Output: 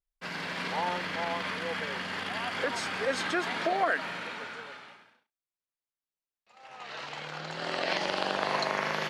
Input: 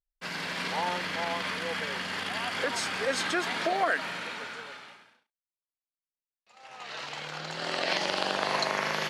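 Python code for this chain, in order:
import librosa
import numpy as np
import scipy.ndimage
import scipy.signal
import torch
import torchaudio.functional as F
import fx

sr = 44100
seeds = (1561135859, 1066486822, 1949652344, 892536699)

y = fx.high_shelf(x, sr, hz=4100.0, db=-7.5)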